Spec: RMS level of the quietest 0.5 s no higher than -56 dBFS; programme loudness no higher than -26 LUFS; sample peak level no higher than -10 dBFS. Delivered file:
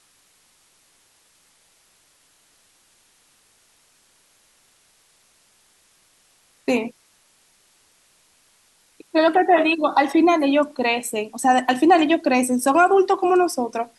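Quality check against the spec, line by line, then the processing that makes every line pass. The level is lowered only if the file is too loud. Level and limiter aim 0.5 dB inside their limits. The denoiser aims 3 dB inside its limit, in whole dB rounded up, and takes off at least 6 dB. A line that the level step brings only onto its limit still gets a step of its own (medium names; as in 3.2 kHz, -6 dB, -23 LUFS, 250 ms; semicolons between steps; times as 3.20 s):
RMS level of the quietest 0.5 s -60 dBFS: pass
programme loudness -18.5 LUFS: fail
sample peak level -5.5 dBFS: fail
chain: trim -8 dB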